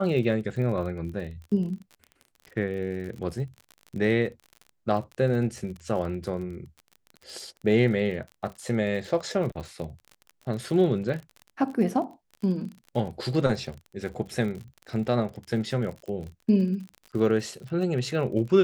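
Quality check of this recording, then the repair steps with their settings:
crackle 41/s -35 dBFS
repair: de-click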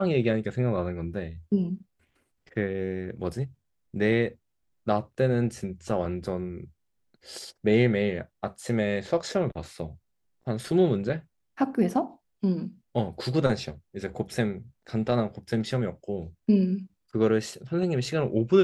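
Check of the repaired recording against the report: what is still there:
none

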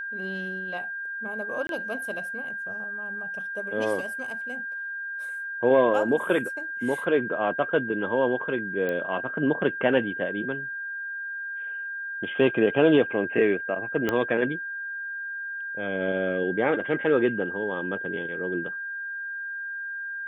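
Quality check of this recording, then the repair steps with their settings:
tone 1600 Hz -31 dBFS
1.67–1.69 gap 22 ms
8.89 pop -18 dBFS
14.09 pop -12 dBFS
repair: de-click; notch 1600 Hz, Q 30; interpolate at 1.67, 22 ms

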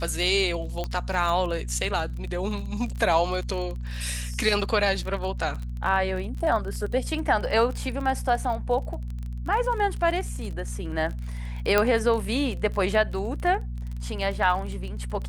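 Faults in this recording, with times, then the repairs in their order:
crackle 30/s -31 dBFS
hum 60 Hz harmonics 4 -32 dBFS
0.84 pop -16 dBFS
11.78 pop -7 dBFS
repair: de-click; de-hum 60 Hz, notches 4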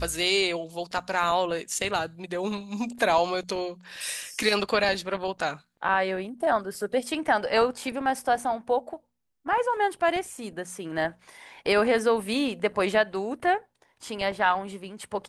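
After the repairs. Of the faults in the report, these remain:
none

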